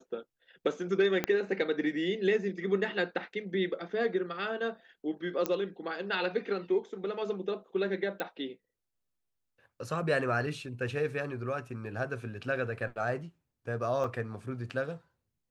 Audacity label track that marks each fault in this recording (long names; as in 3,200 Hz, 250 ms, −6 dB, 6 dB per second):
1.240000	1.240000	click −14 dBFS
5.460000	5.460000	click −15 dBFS
8.200000	8.200000	click −19 dBFS
14.040000	14.040000	drop-out 3.2 ms